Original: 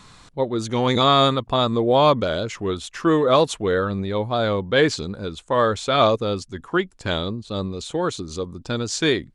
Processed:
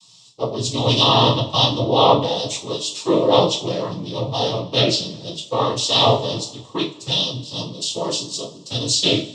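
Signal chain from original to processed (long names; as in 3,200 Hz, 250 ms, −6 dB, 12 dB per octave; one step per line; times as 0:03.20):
cochlear-implant simulation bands 12
drawn EQ curve 1,100 Hz 0 dB, 1,500 Hz −22 dB, 3,400 Hz +12 dB
treble cut that deepens with the level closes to 2,300 Hz, closed at −10 dBFS
coupled-rooms reverb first 0.31 s, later 2.2 s, from −22 dB, DRR −2.5 dB
multiband upward and downward expander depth 40%
level −3 dB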